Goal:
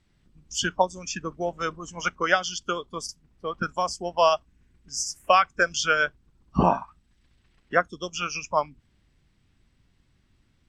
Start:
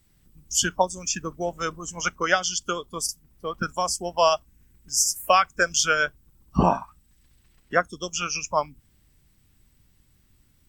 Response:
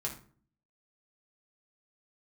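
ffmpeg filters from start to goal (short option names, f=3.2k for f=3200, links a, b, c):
-af "lowpass=4.4k,lowshelf=f=130:g=-4"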